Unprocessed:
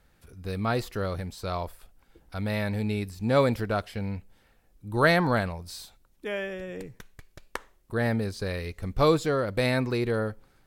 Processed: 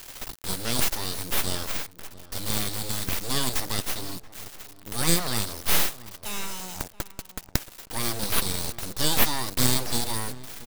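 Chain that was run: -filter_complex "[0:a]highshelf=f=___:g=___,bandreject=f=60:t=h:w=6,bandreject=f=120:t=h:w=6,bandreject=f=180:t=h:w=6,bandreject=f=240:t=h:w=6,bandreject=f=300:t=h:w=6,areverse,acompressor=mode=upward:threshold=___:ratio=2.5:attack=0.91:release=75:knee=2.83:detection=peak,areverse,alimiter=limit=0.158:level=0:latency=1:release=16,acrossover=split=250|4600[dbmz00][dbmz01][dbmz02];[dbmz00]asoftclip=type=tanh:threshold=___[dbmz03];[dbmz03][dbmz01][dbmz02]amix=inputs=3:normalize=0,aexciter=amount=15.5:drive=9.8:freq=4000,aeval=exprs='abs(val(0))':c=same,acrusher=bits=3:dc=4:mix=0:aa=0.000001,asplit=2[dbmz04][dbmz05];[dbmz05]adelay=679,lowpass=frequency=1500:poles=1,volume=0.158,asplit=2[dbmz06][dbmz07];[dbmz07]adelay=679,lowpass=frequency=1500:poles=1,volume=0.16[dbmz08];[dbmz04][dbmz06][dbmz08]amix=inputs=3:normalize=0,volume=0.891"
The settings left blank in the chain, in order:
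2900, -7, 0.00708, 0.02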